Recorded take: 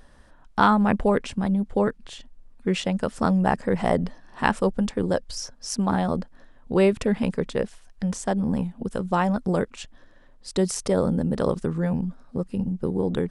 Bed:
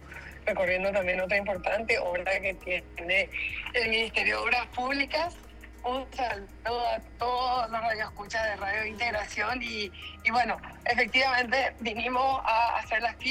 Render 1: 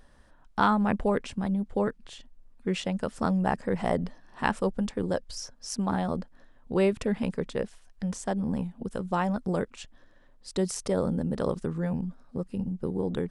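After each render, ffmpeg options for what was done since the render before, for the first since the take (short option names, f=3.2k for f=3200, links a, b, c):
-af "volume=-5dB"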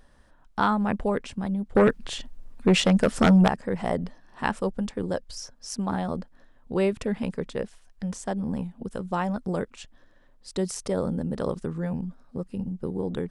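-filter_complex "[0:a]asettb=1/sr,asplit=3[a][b][c];[a]atrim=end=1.754[d];[b]atrim=start=1.75:end=3.48,asetpts=PTS-STARTPTS,afade=t=in:d=0.004:c=qsin,afade=t=out:st=1.726:d=0.004:c=qsin,aeval=exprs='0.237*sin(PI/2*2.51*val(0)/0.237)':c=same[e];[c]atrim=start=3.476[f];[d][e]acrossfade=d=0.004:c1=hsin:c2=qsin[g];[g][f]acrossfade=d=0.004:c1=qsin:c2=hsin"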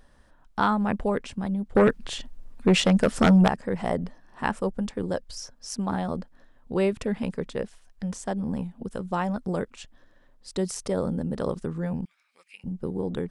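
-filter_complex "[0:a]asettb=1/sr,asplit=3[a][b][c];[a]atrim=end=3.934[d];[b]atrim=start=3.93:end=4.86,asetpts=PTS-STARTPTS,afade=t=in:d=0.004:c=qsin,afade=t=out:st=0.926:d=0.004:c=qsin,equalizer=f=3.9k:w=1.1:g=-3.5[e];[c]atrim=start=4.856[f];[d][e]acrossfade=d=0.004:c1=hsin:c2=qsin[g];[g][f]acrossfade=d=0.004:c1=qsin:c2=hsin,asettb=1/sr,asplit=3[h][i][j];[h]atrim=end=12.054[k];[i]atrim=start=12.05:end=12.64,asetpts=PTS-STARTPTS,afade=t=in:d=0.004:c=qsin,afade=t=out:st=0.586:d=0.004:c=qsin,highpass=f=2.3k:t=q:w=11[l];[j]atrim=start=12.636[m];[k][l]acrossfade=d=0.004:c1=hsin:c2=qsin[n];[n][m]acrossfade=d=0.004:c1=qsin:c2=hsin"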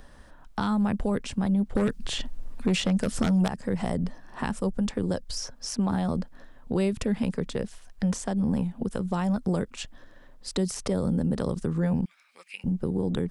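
-filter_complex "[0:a]acrossover=split=240|3900[a][b][c];[a]acompressor=threshold=-29dB:ratio=4[d];[b]acompressor=threshold=-35dB:ratio=4[e];[c]acompressor=threshold=-42dB:ratio=4[f];[d][e][f]amix=inputs=3:normalize=0,asplit=2[g][h];[h]alimiter=level_in=3dB:limit=-24dB:level=0:latency=1:release=185,volume=-3dB,volume=2.5dB[i];[g][i]amix=inputs=2:normalize=0"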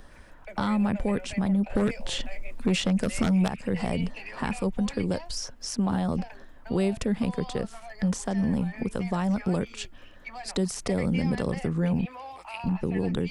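-filter_complex "[1:a]volume=-15.5dB[a];[0:a][a]amix=inputs=2:normalize=0"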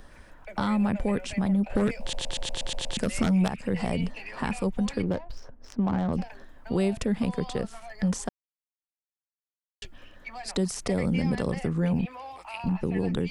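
-filter_complex "[0:a]asettb=1/sr,asplit=3[a][b][c];[a]atrim=end=5.024[d];[b]atrim=start=5.02:end=6.13,asetpts=PTS-STARTPTS,afade=t=in:d=0.004:c=qsin,afade=t=out:st=1.106:d=0.004:c=qsin,adynamicsmooth=sensitivity=3.5:basefreq=1k[e];[c]atrim=start=6.126[f];[d][e]acrossfade=d=0.004:c1=hsin:c2=qsin[g];[g][f]acrossfade=d=0.004:c1=qsin:c2=hsin,asplit=11[h][i][j][k][l][m][n][o][p][q][r];[h]atrim=end=2.132[s];[i]atrim=start=2.008:end=2.132[t];[j]atrim=start=2.008:end=2.132[u];[k]atrim=start=2.008:end=2.132[v];[l]atrim=start=2.008:end=2.132[w];[m]atrim=start=2.008:end=2.132[x];[n]atrim=start=2.008:end=2.132[y];[o]atrim=start=2.008:end=2.132[z];[p]atrim=start=2.968:end=8.29,asetpts=PTS-STARTPTS,afade=t=out:st=5.318:d=0.004:c=hsin[aa];[q]atrim=start=8.29:end=9.82,asetpts=PTS-STARTPTS,volume=0[ab];[r]atrim=start=9.82,asetpts=PTS-STARTPTS,afade=t=in:d=0.004:c=hsin[ac];[s][t]acrossfade=d=0.004:c1=hsin:c2=hsin[ad];[ad][u]acrossfade=d=0.004:c1=hsin:c2=hsin[ae];[ae][v]acrossfade=d=0.004:c1=hsin:c2=hsin[af];[af][w]acrossfade=d=0.004:c1=hsin:c2=hsin[ag];[ag][x]acrossfade=d=0.004:c1=hsin:c2=hsin[ah];[ah][y]acrossfade=d=0.004:c1=hsin:c2=hsin[ai];[ai][z]acrossfade=d=0.004:c1=hsin:c2=hsin[aj];[aa][ab][ac]concat=n=3:v=0:a=1[ak];[aj][ak]acrossfade=d=0.004:c1=hsin:c2=hsin"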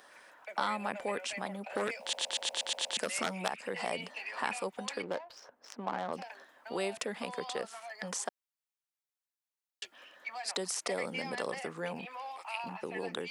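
-af "highpass=610"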